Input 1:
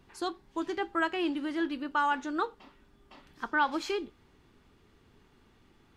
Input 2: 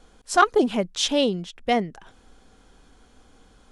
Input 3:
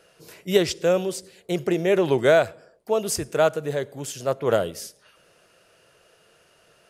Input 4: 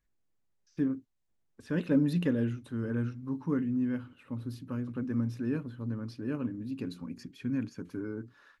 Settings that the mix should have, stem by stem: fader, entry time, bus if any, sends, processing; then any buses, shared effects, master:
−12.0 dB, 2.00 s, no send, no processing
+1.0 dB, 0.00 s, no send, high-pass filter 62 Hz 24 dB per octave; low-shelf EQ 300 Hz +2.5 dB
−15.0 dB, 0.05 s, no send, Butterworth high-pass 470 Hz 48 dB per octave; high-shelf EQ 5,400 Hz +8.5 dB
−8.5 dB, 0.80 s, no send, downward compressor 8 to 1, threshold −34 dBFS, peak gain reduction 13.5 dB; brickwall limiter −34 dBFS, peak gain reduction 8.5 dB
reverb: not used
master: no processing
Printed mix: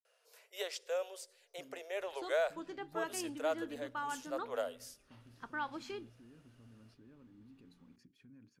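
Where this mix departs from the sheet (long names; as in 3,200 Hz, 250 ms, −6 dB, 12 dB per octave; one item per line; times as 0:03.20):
stem 2: muted
stem 3: missing high-shelf EQ 5,400 Hz +8.5 dB
stem 4 −8.5 dB → −18.0 dB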